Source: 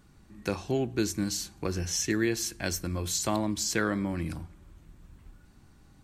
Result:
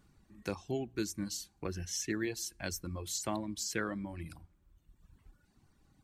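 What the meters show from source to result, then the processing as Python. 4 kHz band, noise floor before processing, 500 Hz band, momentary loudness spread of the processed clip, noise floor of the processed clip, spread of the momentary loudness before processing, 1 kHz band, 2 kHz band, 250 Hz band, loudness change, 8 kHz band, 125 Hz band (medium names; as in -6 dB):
-7.5 dB, -58 dBFS, -8.0 dB, 8 LU, -71 dBFS, 8 LU, -7.5 dB, -7.5 dB, -8.5 dB, -8.0 dB, -7.0 dB, -9.0 dB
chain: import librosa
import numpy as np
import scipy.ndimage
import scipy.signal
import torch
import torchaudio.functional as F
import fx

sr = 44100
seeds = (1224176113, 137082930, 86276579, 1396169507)

y = fx.dereverb_blind(x, sr, rt60_s=1.4)
y = y * 10.0 ** (-6.5 / 20.0)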